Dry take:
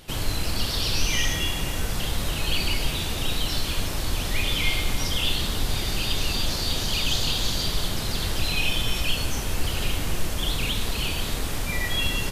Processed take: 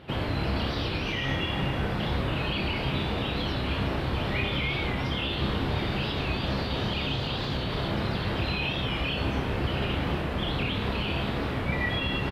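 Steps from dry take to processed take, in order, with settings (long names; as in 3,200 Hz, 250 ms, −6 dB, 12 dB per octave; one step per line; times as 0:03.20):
high-pass filter 85 Hz 12 dB per octave
brickwall limiter −19 dBFS, peak gain reduction 5 dB
high-frequency loss of the air 430 metres
double-tracking delay 15 ms −12.5 dB
flutter between parallel walls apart 5.1 metres, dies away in 0.24 s
wow of a warped record 45 rpm, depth 100 cents
level +4 dB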